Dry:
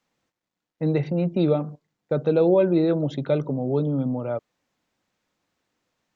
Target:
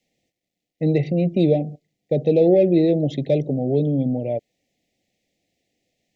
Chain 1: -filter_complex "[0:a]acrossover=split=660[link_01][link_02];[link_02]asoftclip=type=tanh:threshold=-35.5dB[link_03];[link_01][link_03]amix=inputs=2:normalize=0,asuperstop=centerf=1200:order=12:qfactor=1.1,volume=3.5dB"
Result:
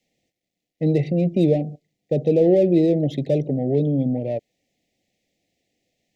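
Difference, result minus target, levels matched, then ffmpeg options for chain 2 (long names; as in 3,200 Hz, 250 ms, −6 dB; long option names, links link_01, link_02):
soft clipping: distortion +11 dB
-filter_complex "[0:a]acrossover=split=660[link_01][link_02];[link_02]asoftclip=type=tanh:threshold=-24dB[link_03];[link_01][link_03]amix=inputs=2:normalize=0,asuperstop=centerf=1200:order=12:qfactor=1.1,volume=3.5dB"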